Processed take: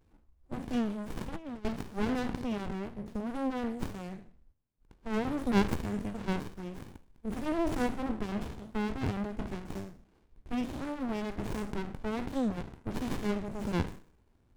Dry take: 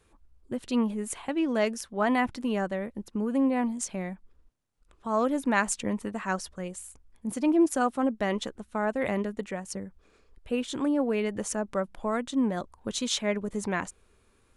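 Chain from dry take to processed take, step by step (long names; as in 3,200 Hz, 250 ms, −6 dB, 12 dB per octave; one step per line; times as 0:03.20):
peak hold with a decay on every bin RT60 0.46 s
0:01.17–0:01.65: compressor whose output falls as the input rises −32 dBFS, ratio −0.5
windowed peak hold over 65 samples
level −1.5 dB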